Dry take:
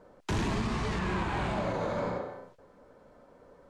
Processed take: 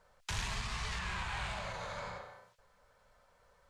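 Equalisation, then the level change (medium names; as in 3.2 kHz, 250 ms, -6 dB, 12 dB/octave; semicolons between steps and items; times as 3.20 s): amplifier tone stack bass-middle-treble 10-0-10; +2.5 dB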